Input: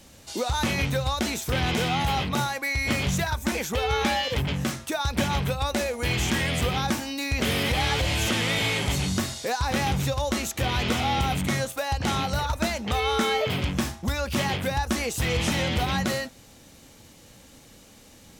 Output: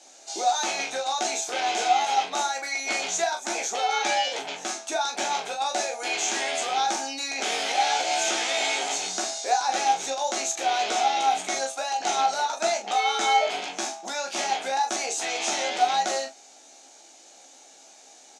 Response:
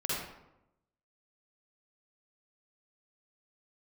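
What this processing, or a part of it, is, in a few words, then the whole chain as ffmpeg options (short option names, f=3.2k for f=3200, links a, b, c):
phone speaker on a table: -filter_complex "[0:a]highpass=120,highpass=f=390:w=0.5412,highpass=f=390:w=1.3066,equalizer=f=500:t=q:w=4:g=-10,equalizer=f=730:t=q:w=4:g=10,equalizer=f=1.1k:t=q:w=4:g=-8,equalizer=f=1.9k:t=q:w=4:g=-6,equalizer=f=3k:t=q:w=4:g=-5,equalizer=f=6.5k:t=q:w=4:g=7,lowpass=f=8.4k:w=0.5412,lowpass=f=8.4k:w=1.3066,asplit=2[a][b];[b]adelay=26,volume=-13dB[c];[a][c]amix=inputs=2:normalize=0,aecho=1:1:15|41:0.596|0.376"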